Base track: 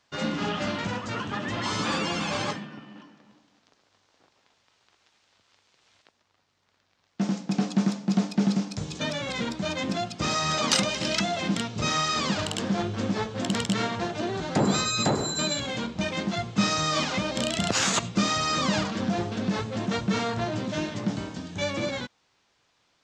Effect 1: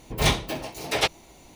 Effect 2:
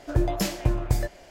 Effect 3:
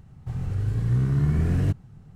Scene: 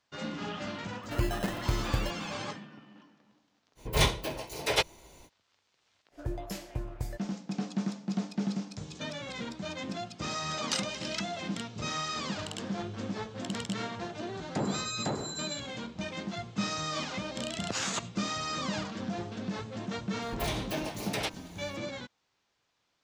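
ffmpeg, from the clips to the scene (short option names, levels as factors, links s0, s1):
-filter_complex "[2:a]asplit=2[s0][s1];[1:a]asplit=2[s2][s3];[0:a]volume=0.376[s4];[s0]acrusher=samples=19:mix=1:aa=0.000001[s5];[s2]aecho=1:1:2:0.33[s6];[s3]acompressor=threshold=0.0501:ratio=6:attack=3.2:release=140:knee=1:detection=peak[s7];[s5]atrim=end=1.3,asetpts=PTS-STARTPTS,volume=0.447,afade=t=in:d=0.004:c=hsin,afade=t=out:st=1.296:d=0.004:c=hsin,adelay=1030[s8];[s6]atrim=end=1.55,asetpts=PTS-STARTPTS,volume=0.631,afade=t=in:d=0.05,afade=t=out:st=1.5:d=0.05,adelay=3750[s9];[s1]atrim=end=1.3,asetpts=PTS-STARTPTS,volume=0.237,afade=t=in:d=0.05,afade=t=out:st=1.25:d=0.05,adelay=269010S[s10];[s7]atrim=end=1.55,asetpts=PTS-STARTPTS,volume=0.708,afade=t=in:d=0.004:c=hsin,afade=t=out:st=1.546:d=0.004:c=hsin,adelay=20220[s11];[s4][s8][s9][s10][s11]amix=inputs=5:normalize=0"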